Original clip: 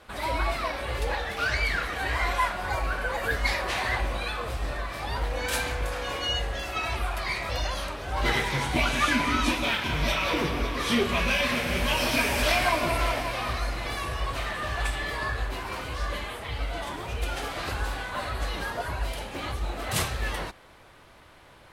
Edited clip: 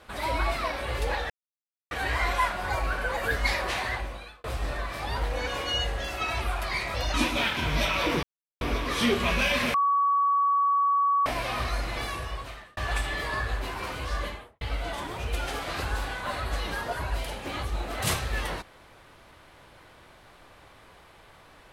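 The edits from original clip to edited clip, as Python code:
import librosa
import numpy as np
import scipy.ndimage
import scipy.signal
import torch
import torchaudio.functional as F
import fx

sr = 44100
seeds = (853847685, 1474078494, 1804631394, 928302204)

y = fx.studio_fade_out(x, sr, start_s=16.08, length_s=0.42)
y = fx.edit(y, sr, fx.silence(start_s=1.3, length_s=0.61),
    fx.fade_out_span(start_s=3.66, length_s=0.78),
    fx.cut(start_s=5.47, length_s=0.55),
    fx.cut(start_s=7.69, length_s=1.72),
    fx.insert_silence(at_s=10.5, length_s=0.38),
    fx.bleep(start_s=11.63, length_s=1.52, hz=1130.0, db=-20.0),
    fx.fade_out_span(start_s=13.89, length_s=0.77), tone=tone)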